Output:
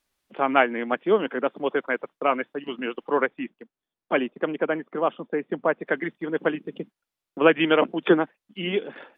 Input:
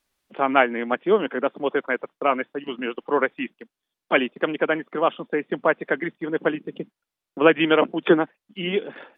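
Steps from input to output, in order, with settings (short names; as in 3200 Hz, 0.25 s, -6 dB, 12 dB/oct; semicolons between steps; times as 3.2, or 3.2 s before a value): 3.26–5.87 high shelf 2000 Hz -10 dB; gain -1.5 dB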